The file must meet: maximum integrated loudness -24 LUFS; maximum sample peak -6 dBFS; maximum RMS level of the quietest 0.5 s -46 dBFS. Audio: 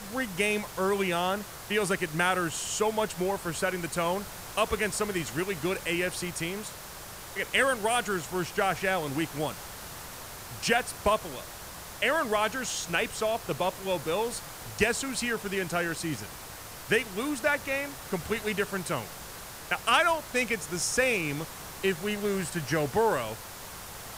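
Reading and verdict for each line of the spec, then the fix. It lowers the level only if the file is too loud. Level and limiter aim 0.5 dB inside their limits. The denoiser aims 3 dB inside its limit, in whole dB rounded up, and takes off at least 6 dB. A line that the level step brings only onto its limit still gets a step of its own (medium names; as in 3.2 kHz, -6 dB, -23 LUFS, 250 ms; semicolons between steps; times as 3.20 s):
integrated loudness -29.0 LUFS: pass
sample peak -10.5 dBFS: pass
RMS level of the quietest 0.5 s -43 dBFS: fail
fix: noise reduction 6 dB, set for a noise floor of -43 dBFS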